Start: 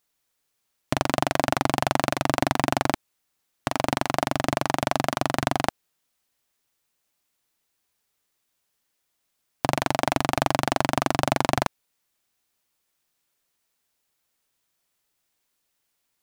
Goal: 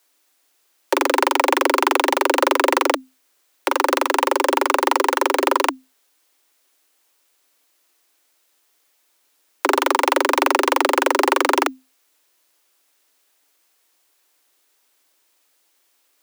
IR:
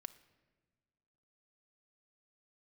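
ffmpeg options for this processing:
-af "aeval=exprs='0.794*sin(PI/2*3.16*val(0)/0.794)':c=same,afreqshift=260,volume=-2.5dB"

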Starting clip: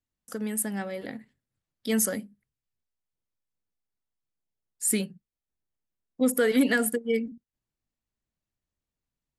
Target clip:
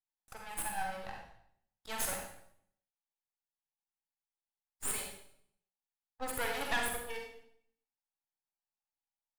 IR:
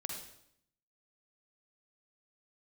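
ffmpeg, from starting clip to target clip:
-filter_complex "[0:a]agate=range=-7dB:threshold=-44dB:ratio=16:detection=peak,highpass=f=830:t=q:w=8.7,aeval=exprs='max(val(0),0)':c=same[a];[1:a]atrim=start_sample=2205,asetrate=48510,aresample=44100[b];[a][b]afir=irnorm=-1:irlink=0,volume=-2.5dB"

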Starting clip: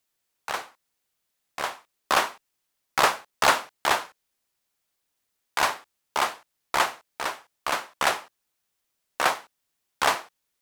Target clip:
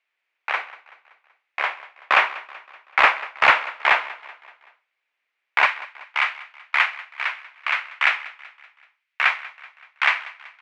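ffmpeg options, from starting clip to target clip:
-af "asetnsamples=n=441:p=0,asendcmd='5.66 highpass f 1400',highpass=580,aecho=1:1:190|380|570|760:0.112|0.0572|0.0292|0.0149,asoftclip=type=hard:threshold=-12.5dB,lowpass=f=2.3k:t=q:w=3.5,volume=2.5dB"

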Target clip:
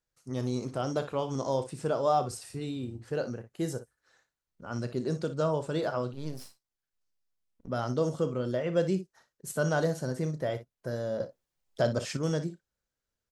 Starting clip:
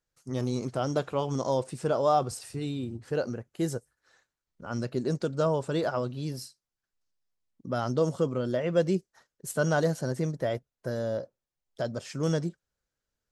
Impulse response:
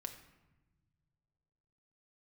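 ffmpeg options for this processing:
-filter_complex "[0:a]asettb=1/sr,asplit=3[a][b][c];[a]atrim=end=6.134[d];[b]atrim=start=6.13:end=7.68,asetpts=PTS-STARTPTS,afade=t=in:d=0.004:c=qsin,afade=t=out:st=1.546:d=0.004:c=qsin,aeval=exprs='max(val(0),0)':c=same[e];[c]atrim=start=7.676[f];[d][e]acrossfade=d=0.004:c1=hsin:c2=qsin[g];[g][f]acrossfade=d=0.004:c1=qsin:c2=hsin,aecho=1:1:32|59:0.2|0.237,asettb=1/sr,asplit=3[h][i][j];[h]atrim=end=11.204[k];[i]atrim=start=11.2:end=12.17,asetpts=PTS-STARTPTS,afade=t=in:d=0.004:c=qsin,afade=t=out:st=0.966:d=0.004:c=qsin,acontrast=86[l];[j]atrim=start=12.166[m];[k][l]acrossfade=d=0.004:c1=hsin:c2=qsin[n];[n][m]acrossfade=d=0.004:c1=qsin:c2=hsin,volume=-2.5dB"

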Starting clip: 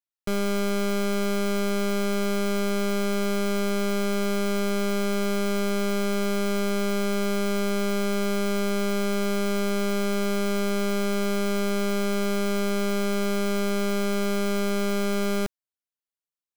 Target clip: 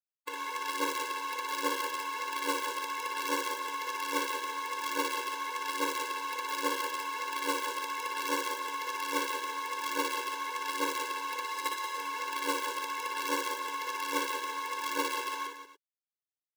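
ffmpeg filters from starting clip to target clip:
-filter_complex "[0:a]highpass=f=560:t=q:w=0.5412,highpass=f=560:t=q:w=1.307,lowpass=f=2.6k:t=q:w=0.5176,lowpass=f=2.6k:t=q:w=0.7071,lowpass=f=2.6k:t=q:w=1.932,afreqshift=-320,asplit=3[a][b][c];[a]afade=t=out:st=11.44:d=0.02[d];[b]aecho=1:1:5.3:0.67,afade=t=in:st=11.44:d=0.02,afade=t=out:st=11.95:d=0.02[e];[c]afade=t=in:st=11.95:d=0.02[f];[d][e][f]amix=inputs=3:normalize=0,asoftclip=type=hard:threshold=-36.5dB,aphaser=in_gain=1:out_gain=1:delay=2.8:decay=0.62:speed=1.2:type=triangular,acrusher=bits=6:dc=4:mix=0:aa=0.000001,highpass=410,asplit=2[g][h];[h]aecho=0:1:59|67|185|288:0.562|0.141|0.355|0.158[i];[g][i]amix=inputs=2:normalize=0,afftfilt=real='re*eq(mod(floor(b*sr/1024/290),2),1)':imag='im*eq(mod(floor(b*sr/1024/290),2),1)':win_size=1024:overlap=0.75,volume=8dB"

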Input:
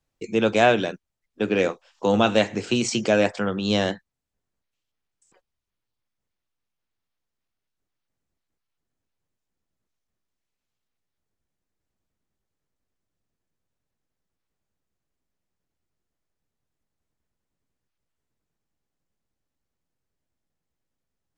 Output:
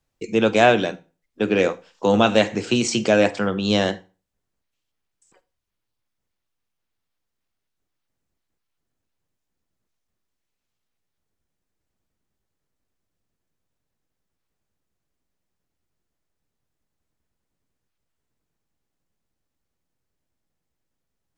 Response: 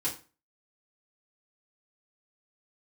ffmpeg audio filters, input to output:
-filter_complex "[0:a]asplit=2[a][b];[1:a]atrim=start_sample=2205,adelay=42[c];[b][c]afir=irnorm=-1:irlink=0,volume=-22dB[d];[a][d]amix=inputs=2:normalize=0,volume=2.5dB"

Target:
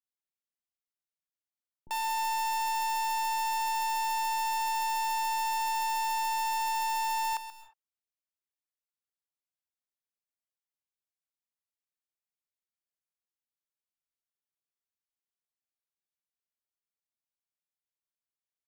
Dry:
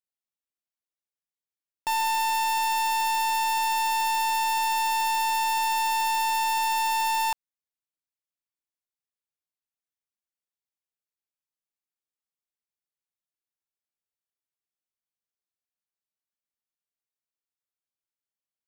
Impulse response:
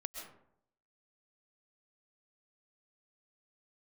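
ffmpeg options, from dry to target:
-filter_complex "[0:a]acrossover=split=330[a][b];[b]adelay=40[c];[a][c]amix=inputs=2:normalize=0,asplit=2[d][e];[1:a]atrim=start_sample=2205,afade=t=out:st=0.28:d=0.01,atrim=end_sample=12789,adelay=132[f];[e][f]afir=irnorm=-1:irlink=0,volume=-10dB[g];[d][g]amix=inputs=2:normalize=0,volume=-6.5dB"

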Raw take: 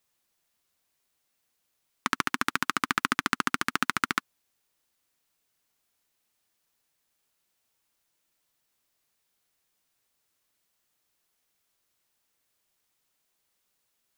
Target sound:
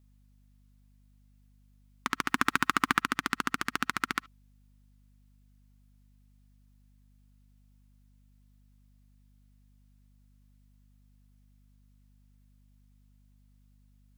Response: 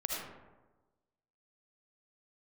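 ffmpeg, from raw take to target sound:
-filter_complex "[0:a]asplit=3[a][b][c];[a]afade=t=out:st=2.27:d=0.02[d];[b]acontrast=72,afade=t=in:st=2.27:d=0.02,afade=t=out:st=3:d=0.02[e];[c]afade=t=in:st=3:d=0.02[f];[d][e][f]amix=inputs=3:normalize=0,asplit=2[g][h];[1:a]atrim=start_sample=2205,atrim=end_sample=3528,lowpass=5.2k[i];[h][i]afir=irnorm=-1:irlink=0,volume=-18dB[j];[g][j]amix=inputs=2:normalize=0,aeval=exprs='val(0)+0.00158*(sin(2*PI*50*n/s)+sin(2*PI*2*50*n/s)/2+sin(2*PI*3*50*n/s)/3+sin(2*PI*4*50*n/s)/4+sin(2*PI*5*50*n/s)/5)':c=same,volume=-4.5dB"

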